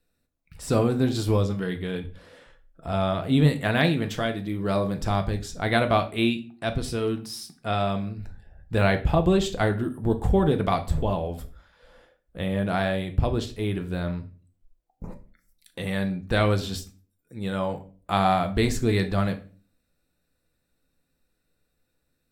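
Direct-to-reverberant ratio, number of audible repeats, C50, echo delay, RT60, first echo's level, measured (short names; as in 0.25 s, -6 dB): 6.5 dB, none, 15.0 dB, none, 0.40 s, none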